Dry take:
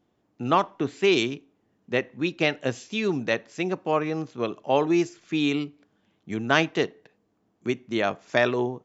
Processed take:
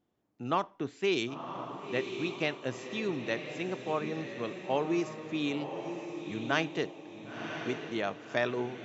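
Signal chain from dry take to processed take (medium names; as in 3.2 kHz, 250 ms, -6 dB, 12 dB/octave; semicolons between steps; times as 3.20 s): echo that smears into a reverb 1028 ms, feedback 41%, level -7 dB; trim -8.5 dB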